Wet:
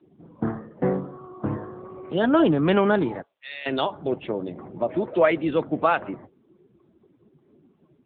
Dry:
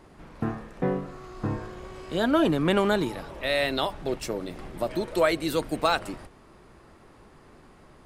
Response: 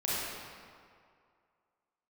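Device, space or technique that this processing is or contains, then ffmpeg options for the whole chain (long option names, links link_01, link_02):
mobile call with aggressive noise cancelling: -filter_complex "[0:a]asettb=1/sr,asplit=3[link_01][link_02][link_03];[link_01]atrim=end=3.224[link_04];[link_02]atrim=start=3.22:end=3.66,asetpts=PTS-STARTPTS,afade=type=in:duration=0.004:curve=qsin,afade=type=out:start_time=0.436:duration=0.004:curve=qsin,aderivative[link_05];[link_03]atrim=start=3.656[link_06];[link_04][link_05]acrossfade=duration=0.004:curve1=hsin:curve2=qsin[link_07];[link_07][link_06]acrossfade=duration=0.004:curve1=qsin:curve2=hsin,highpass=100,afftdn=noise_reduction=23:noise_floor=-43,volume=4dB" -ar 8000 -c:a libopencore_amrnb -b:a 7950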